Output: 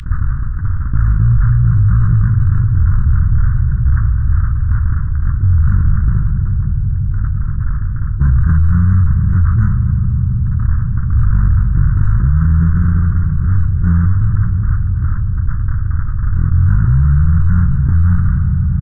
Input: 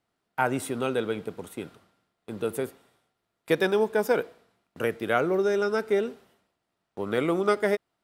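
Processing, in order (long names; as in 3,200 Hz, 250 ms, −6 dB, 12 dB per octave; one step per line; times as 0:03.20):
linear delta modulator 16 kbit/s, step −23.5 dBFS
inverse Chebyshev band-stop filter 720–1,600 Hz, stop band 70 dB
noise gate −33 dBFS, range −60 dB
low-shelf EQ 99 Hz +10.5 dB
on a send: single-tap delay 120 ms −23.5 dB
on the sum: feedback delay network reverb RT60 2.6 s, low-frequency decay 1.35×, high-frequency decay 0.5×, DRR 12.5 dB
wrong playback speed 78 rpm record played at 33 rpm
boost into a limiter +32 dB
envelope flattener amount 70%
level −5.5 dB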